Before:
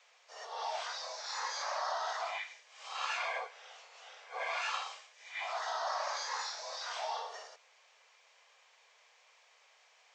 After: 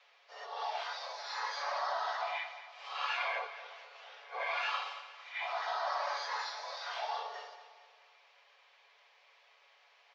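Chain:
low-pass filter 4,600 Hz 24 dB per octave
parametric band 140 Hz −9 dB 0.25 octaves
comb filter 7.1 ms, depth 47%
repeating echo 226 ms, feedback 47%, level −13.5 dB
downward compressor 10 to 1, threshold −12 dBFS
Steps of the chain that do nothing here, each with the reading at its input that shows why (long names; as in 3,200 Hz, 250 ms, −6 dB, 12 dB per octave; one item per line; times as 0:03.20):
parametric band 140 Hz: nothing at its input below 380 Hz
downward compressor, threshold −12 dBFS: peak of its input −22.5 dBFS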